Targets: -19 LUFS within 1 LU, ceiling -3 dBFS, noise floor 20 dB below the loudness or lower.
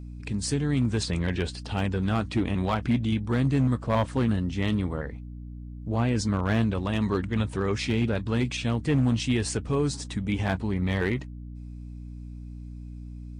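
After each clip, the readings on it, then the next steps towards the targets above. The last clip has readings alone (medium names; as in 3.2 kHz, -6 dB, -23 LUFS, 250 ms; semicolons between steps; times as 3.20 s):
clipped samples 0.6%; clipping level -17.0 dBFS; hum 60 Hz; highest harmonic 300 Hz; hum level -38 dBFS; loudness -27.0 LUFS; peak level -17.0 dBFS; loudness target -19.0 LUFS
-> clip repair -17 dBFS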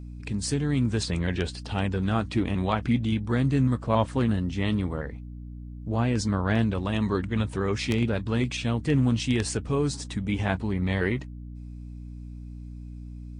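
clipped samples 0.0%; hum 60 Hz; highest harmonic 180 Hz; hum level -38 dBFS
-> de-hum 60 Hz, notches 3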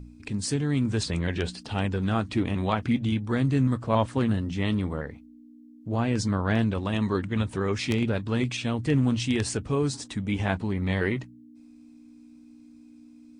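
hum not found; loudness -27.0 LUFS; peak level -8.5 dBFS; loudness target -19.0 LUFS
-> trim +8 dB; peak limiter -3 dBFS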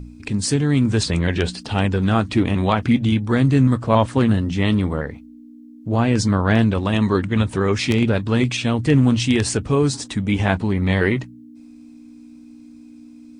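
loudness -19.0 LUFS; peak level -3.0 dBFS; noise floor -43 dBFS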